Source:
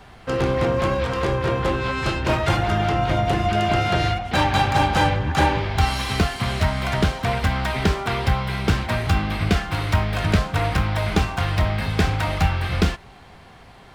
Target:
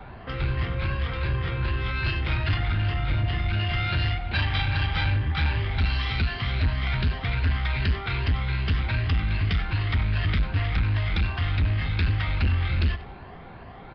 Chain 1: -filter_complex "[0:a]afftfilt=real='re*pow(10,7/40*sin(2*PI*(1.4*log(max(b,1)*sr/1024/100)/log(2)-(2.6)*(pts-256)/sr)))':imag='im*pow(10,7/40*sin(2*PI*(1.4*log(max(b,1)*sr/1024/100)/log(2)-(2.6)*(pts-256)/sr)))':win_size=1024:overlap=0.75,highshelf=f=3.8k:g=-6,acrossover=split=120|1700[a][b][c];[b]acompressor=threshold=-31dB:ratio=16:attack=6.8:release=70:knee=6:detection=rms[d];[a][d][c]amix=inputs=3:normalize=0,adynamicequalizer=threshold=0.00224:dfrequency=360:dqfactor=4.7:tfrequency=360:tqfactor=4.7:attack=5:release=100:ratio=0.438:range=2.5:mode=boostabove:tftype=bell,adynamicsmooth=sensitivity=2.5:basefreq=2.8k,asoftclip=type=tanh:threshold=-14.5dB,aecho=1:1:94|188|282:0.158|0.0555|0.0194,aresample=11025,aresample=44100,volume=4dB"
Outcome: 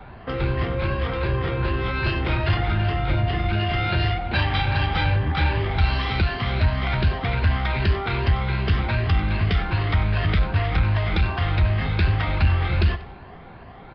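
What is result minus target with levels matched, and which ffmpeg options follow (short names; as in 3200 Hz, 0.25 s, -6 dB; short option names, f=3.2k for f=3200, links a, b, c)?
compressor: peak gain reduction -10 dB; soft clip: distortion -8 dB
-filter_complex "[0:a]afftfilt=real='re*pow(10,7/40*sin(2*PI*(1.4*log(max(b,1)*sr/1024/100)/log(2)-(2.6)*(pts-256)/sr)))':imag='im*pow(10,7/40*sin(2*PI*(1.4*log(max(b,1)*sr/1024/100)/log(2)-(2.6)*(pts-256)/sr)))':win_size=1024:overlap=0.75,highshelf=f=3.8k:g=-6,acrossover=split=120|1700[a][b][c];[b]acompressor=threshold=-41.5dB:ratio=16:attack=6.8:release=70:knee=6:detection=rms[d];[a][d][c]amix=inputs=3:normalize=0,adynamicequalizer=threshold=0.00224:dfrequency=360:dqfactor=4.7:tfrequency=360:tqfactor=4.7:attack=5:release=100:ratio=0.438:range=2.5:mode=boostabove:tftype=bell,adynamicsmooth=sensitivity=2.5:basefreq=2.8k,asoftclip=type=tanh:threshold=-22dB,aecho=1:1:94|188|282:0.158|0.0555|0.0194,aresample=11025,aresample=44100,volume=4dB"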